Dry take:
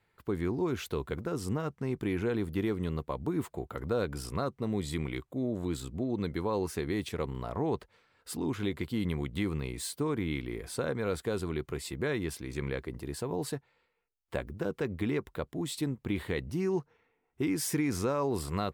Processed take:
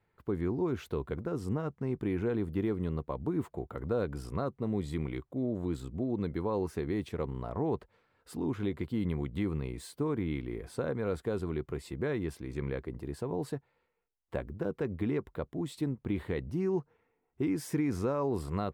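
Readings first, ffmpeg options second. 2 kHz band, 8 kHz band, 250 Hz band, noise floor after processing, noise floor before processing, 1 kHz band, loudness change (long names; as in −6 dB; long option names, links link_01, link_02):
−5.5 dB, −11.0 dB, 0.0 dB, −77 dBFS, −76 dBFS, −2.5 dB, −0.5 dB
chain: -af "highshelf=frequency=2000:gain=-11.5"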